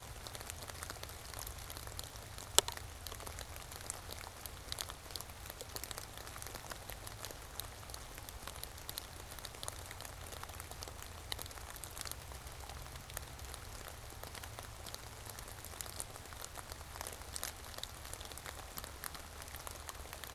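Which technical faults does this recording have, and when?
surface crackle 150 per second −51 dBFS

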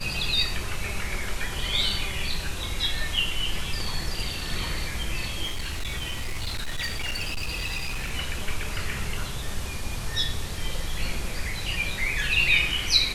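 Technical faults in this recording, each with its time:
0:05.43–0:08.14: clipping −25.5 dBFS

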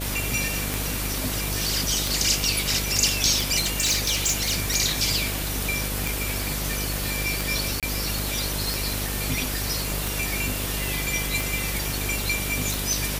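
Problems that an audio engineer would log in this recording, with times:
mains buzz 50 Hz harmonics 13 −31 dBFS
scratch tick 45 rpm
0:03.58–0:04.60: clipping −18 dBFS
0:07.80–0:07.83: drop-out 27 ms

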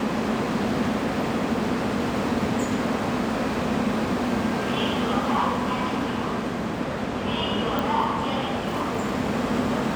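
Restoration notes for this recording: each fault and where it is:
0:07.79: click

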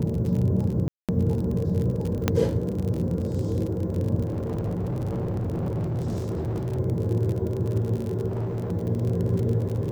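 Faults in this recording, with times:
surface crackle 45 per second −29 dBFS
0:00.88–0:01.09: drop-out 207 ms
0:02.28: click −6 dBFS
0:04.26–0:06.79: clipping −24.5 dBFS
0:08.28–0:08.72: clipping −25.5 dBFS

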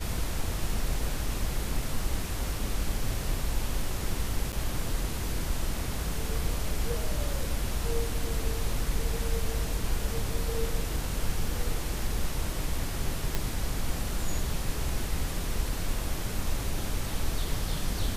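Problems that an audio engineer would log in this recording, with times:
0:04.52–0:04.53: drop-out 9 ms
0:13.35: click

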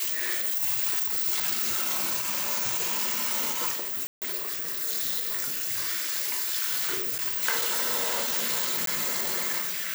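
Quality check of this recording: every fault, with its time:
0:04.07–0:04.22: drop-out 148 ms
0:07.18–0:07.19: drop-out 7.9 ms
0:08.86–0:08.87: drop-out 13 ms

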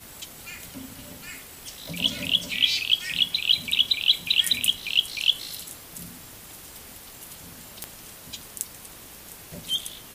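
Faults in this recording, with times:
0:01.86: click
0:07.84: click −14 dBFS

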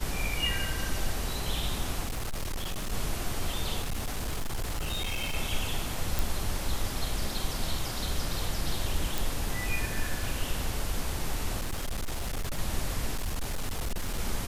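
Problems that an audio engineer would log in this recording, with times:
0:02.06–0:02.93: clipping −29 dBFS
0:03.81–0:05.36: clipping −27.5 dBFS
0:06.19: click
0:09.18: click
0:11.59–0:12.59: clipping −28 dBFS
0:13.14–0:14.19: clipping −27 dBFS

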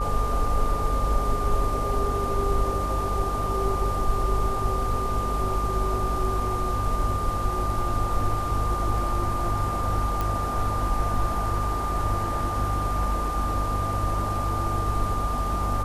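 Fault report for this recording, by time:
mains hum 50 Hz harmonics 5 −30 dBFS
whistle 1,200 Hz −28 dBFS
0:10.21: click

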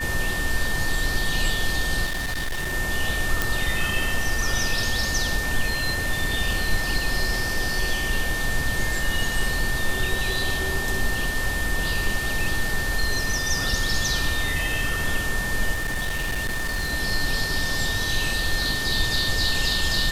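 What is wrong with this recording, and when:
whistle 1,800 Hz −27 dBFS
0:02.05–0:02.74: clipping −23.5 dBFS
0:03.42: click
0:15.73–0:16.93: clipping −22 dBFS

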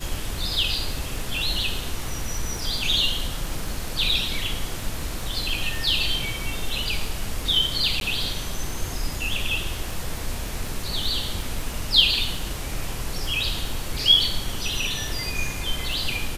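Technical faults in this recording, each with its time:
surface crackle 14 per second −28 dBFS
0:08.00–0:08.01: drop-out 12 ms

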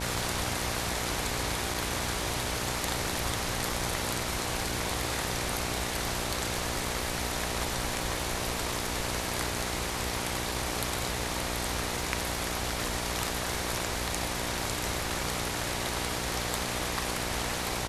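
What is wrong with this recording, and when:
mains buzz 60 Hz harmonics 16 −37 dBFS
surface crackle 16 per second −37 dBFS
0:01.74: drop-out 4.1 ms

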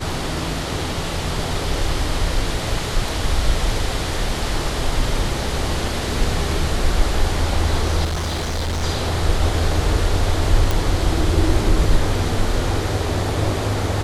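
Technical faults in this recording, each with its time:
0:08.04–0:08.84: clipping −19.5 dBFS
0:10.71: click

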